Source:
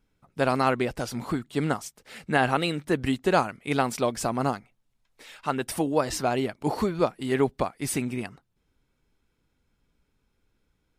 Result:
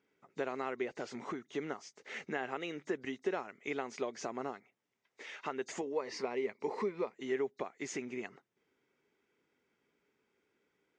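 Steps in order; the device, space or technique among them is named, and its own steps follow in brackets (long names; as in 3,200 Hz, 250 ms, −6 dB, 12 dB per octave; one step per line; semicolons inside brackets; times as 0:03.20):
hearing aid with frequency lowering (hearing-aid frequency compression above 3,600 Hz 1.5 to 1; downward compressor 4 to 1, threshold −36 dBFS, peak gain reduction 16.5 dB; loudspeaker in its box 260–6,900 Hz, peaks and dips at 400 Hz +8 dB, 2,000 Hz +7 dB, 4,200 Hz −7 dB)
0:05.81–0:07.14: EQ curve with evenly spaced ripples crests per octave 0.89, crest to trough 8 dB
level −2 dB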